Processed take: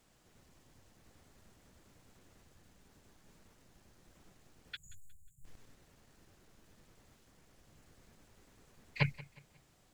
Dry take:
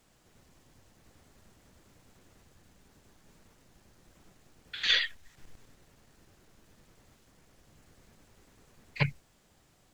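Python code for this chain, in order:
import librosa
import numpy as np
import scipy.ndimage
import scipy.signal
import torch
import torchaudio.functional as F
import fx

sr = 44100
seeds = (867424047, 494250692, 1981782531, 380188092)

y = fx.brickwall_bandstop(x, sr, low_hz=180.0, high_hz=6700.0, at=(4.75, 5.44), fade=0.02)
y = fx.echo_feedback(y, sr, ms=180, feedback_pct=36, wet_db=-20.0)
y = y * librosa.db_to_amplitude(-3.0)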